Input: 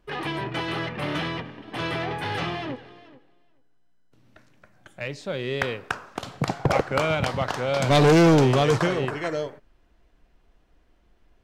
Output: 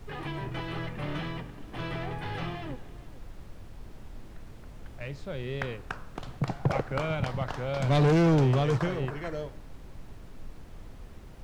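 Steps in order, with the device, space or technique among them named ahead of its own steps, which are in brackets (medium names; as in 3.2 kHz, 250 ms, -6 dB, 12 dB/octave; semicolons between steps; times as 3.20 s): car interior (peaking EQ 130 Hz +7 dB 0.98 oct; treble shelf 4.6 kHz -7 dB; brown noise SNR 11 dB); trim -8 dB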